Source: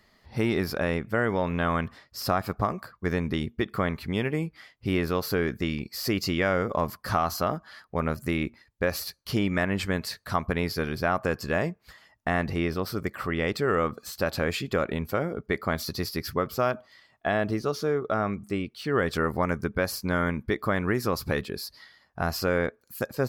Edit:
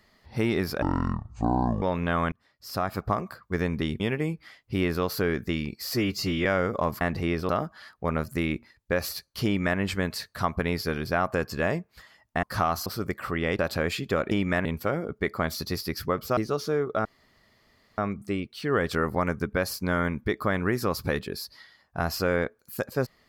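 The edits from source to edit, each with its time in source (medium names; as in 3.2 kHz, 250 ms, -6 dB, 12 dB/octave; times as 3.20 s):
0.82–1.34 s: speed 52%
1.84–2.54 s: fade in
3.52–4.13 s: delete
6.07–6.41 s: stretch 1.5×
6.97–7.40 s: swap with 12.34–12.82 s
9.36–9.70 s: copy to 14.93 s
13.55–14.21 s: delete
16.65–17.52 s: delete
18.20 s: insert room tone 0.93 s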